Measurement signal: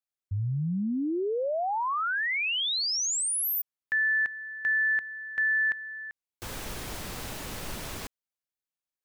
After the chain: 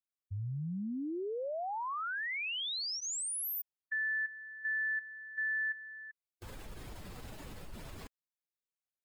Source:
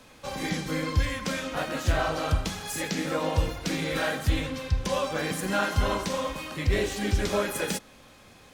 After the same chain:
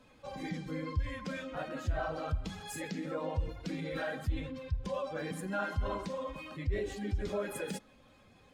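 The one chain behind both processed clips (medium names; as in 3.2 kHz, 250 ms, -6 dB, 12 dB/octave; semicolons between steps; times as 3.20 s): spectral contrast enhancement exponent 1.5; band-stop 5.9 kHz, Q 14; trim -8.5 dB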